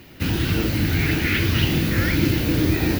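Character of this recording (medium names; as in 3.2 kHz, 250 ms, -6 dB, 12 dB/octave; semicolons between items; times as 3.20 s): noise floor -44 dBFS; spectral tilt -4.5 dB/octave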